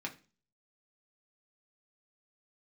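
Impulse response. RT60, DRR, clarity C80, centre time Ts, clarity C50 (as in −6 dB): 0.35 s, 0.0 dB, 20.5 dB, 10 ms, 15.0 dB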